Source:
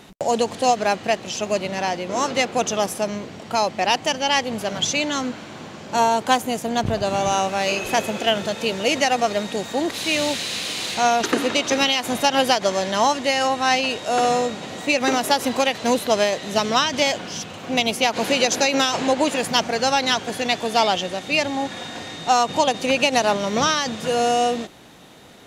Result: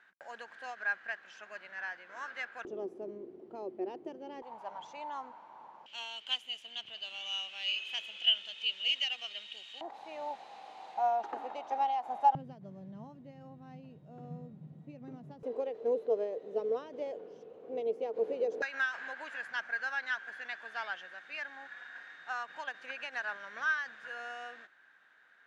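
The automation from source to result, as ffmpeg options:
ffmpeg -i in.wav -af "asetnsamples=nb_out_samples=441:pad=0,asendcmd='2.65 bandpass f 370;4.42 bandpass f 920;5.86 bandpass f 3000;9.81 bandpass f 810;12.35 bandpass f 150;15.43 bandpass f 450;18.62 bandpass f 1600',bandpass=frequency=1600:width_type=q:width=12:csg=0" out.wav

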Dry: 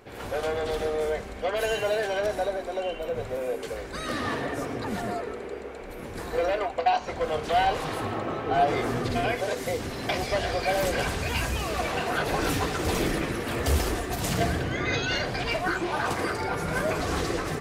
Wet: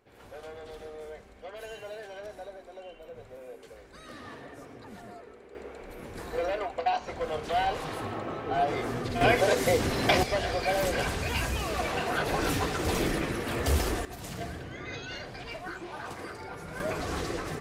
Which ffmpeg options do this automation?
ffmpeg -i in.wav -af "asetnsamples=nb_out_samples=441:pad=0,asendcmd='5.55 volume volume -4.5dB;9.21 volume volume 5dB;10.23 volume volume -2dB;14.05 volume volume -12dB;16.8 volume volume -5dB',volume=-15dB" out.wav

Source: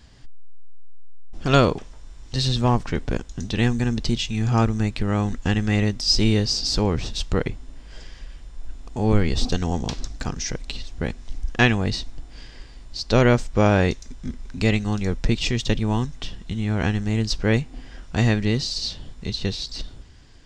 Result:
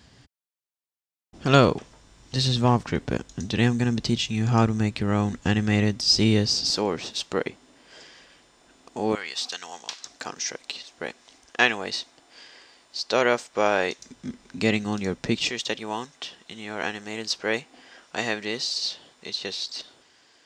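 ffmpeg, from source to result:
ffmpeg -i in.wav -af "asetnsamples=nb_out_samples=441:pad=0,asendcmd='6.7 highpass f 300;9.15 highpass f 1200;10.05 highpass f 480;13.99 highpass f 190;15.5 highpass f 480',highpass=99" out.wav

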